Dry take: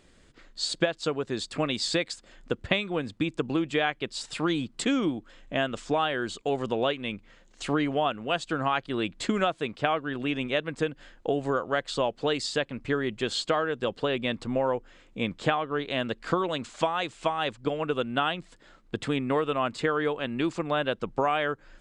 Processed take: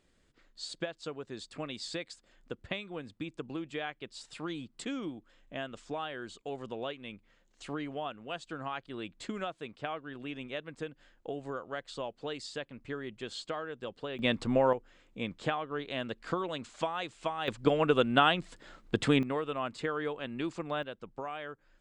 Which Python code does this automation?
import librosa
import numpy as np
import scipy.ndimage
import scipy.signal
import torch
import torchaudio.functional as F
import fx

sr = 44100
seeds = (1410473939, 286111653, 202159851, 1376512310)

y = fx.gain(x, sr, db=fx.steps((0.0, -11.5), (14.19, 0.5), (14.73, -7.0), (17.48, 2.5), (19.23, -7.5), (20.83, -14.0)))